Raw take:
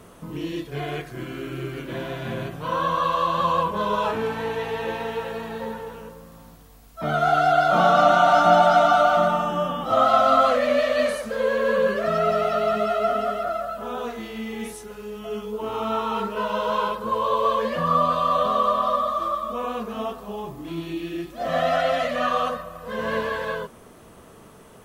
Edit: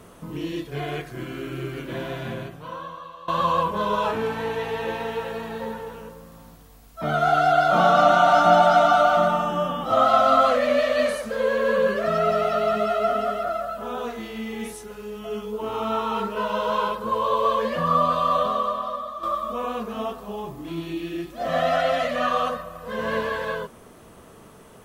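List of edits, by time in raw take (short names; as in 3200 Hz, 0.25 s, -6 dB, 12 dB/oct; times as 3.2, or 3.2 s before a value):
2.2–3.28 fade out quadratic, to -20.5 dB
18.36–19.23 fade out quadratic, to -9.5 dB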